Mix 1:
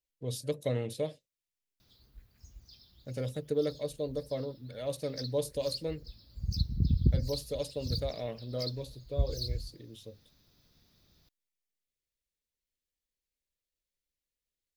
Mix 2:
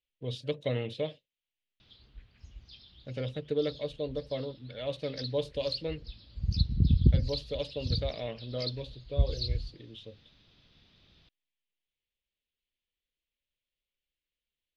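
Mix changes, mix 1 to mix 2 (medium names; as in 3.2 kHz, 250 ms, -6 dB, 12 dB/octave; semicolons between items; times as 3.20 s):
background +3.5 dB; master: add resonant low-pass 3.1 kHz, resonance Q 2.9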